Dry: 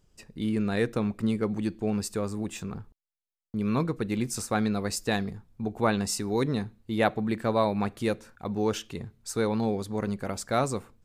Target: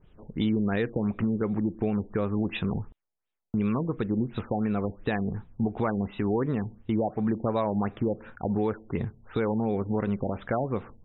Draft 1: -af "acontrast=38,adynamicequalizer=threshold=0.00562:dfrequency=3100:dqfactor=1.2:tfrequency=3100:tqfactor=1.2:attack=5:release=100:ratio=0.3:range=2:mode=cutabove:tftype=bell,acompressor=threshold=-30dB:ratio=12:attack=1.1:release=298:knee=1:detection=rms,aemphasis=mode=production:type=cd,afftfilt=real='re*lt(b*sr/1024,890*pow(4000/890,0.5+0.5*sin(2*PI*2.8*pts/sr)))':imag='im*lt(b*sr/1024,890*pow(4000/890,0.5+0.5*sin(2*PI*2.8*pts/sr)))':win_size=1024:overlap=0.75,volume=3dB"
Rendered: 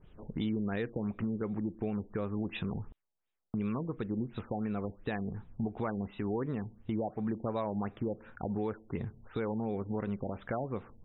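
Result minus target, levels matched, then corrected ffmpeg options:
compressor: peak gain reduction +7.5 dB
-af "acontrast=38,adynamicequalizer=threshold=0.00562:dfrequency=3100:dqfactor=1.2:tfrequency=3100:tqfactor=1.2:attack=5:release=100:ratio=0.3:range=2:mode=cutabove:tftype=bell,acompressor=threshold=-22dB:ratio=12:attack=1.1:release=298:knee=1:detection=rms,aemphasis=mode=production:type=cd,afftfilt=real='re*lt(b*sr/1024,890*pow(4000/890,0.5+0.5*sin(2*PI*2.8*pts/sr)))':imag='im*lt(b*sr/1024,890*pow(4000/890,0.5+0.5*sin(2*PI*2.8*pts/sr)))':win_size=1024:overlap=0.75,volume=3dB"

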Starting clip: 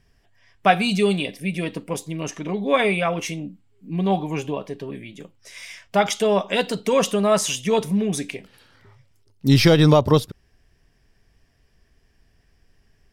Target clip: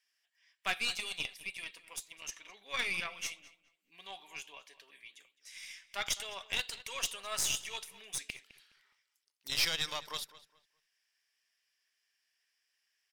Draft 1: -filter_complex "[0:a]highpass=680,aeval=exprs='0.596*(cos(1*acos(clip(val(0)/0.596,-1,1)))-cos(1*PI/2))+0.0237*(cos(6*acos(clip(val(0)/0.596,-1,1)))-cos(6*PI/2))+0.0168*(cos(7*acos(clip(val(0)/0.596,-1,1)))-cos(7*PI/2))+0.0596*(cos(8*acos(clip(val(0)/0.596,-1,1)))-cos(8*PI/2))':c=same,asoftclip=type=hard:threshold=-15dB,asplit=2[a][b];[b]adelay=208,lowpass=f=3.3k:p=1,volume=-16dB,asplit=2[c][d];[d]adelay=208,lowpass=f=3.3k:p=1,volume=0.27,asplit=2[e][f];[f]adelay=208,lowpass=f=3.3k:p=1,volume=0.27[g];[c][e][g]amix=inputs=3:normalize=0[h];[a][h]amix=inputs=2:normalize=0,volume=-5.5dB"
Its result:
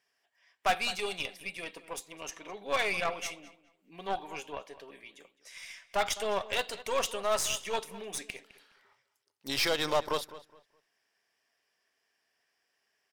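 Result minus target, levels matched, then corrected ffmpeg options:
500 Hz band +13.0 dB
-filter_complex "[0:a]highpass=2.1k,aeval=exprs='0.596*(cos(1*acos(clip(val(0)/0.596,-1,1)))-cos(1*PI/2))+0.0237*(cos(6*acos(clip(val(0)/0.596,-1,1)))-cos(6*PI/2))+0.0168*(cos(7*acos(clip(val(0)/0.596,-1,1)))-cos(7*PI/2))+0.0596*(cos(8*acos(clip(val(0)/0.596,-1,1)))-cos(8*PI/2))':c=same,asoftclip=type=hard:threshold=-15dB,asplit=2[a][b];[b]adelay=208,lowpass=f=3.3k:p=1,volume=-16dB,asplit=2[c][d];[d]adelay=208,lowpass=f=3.3k:p=1,volume=0.27,asplit=2[e][f];[f]adelay=208,lowpass=f=3.3k:p=1,volume=0.27[g];[c][e][g]amix=inputs=3:normalize=0[h];[a][h]amix=inputs=2:normalize=0,volume=-5.5dB"

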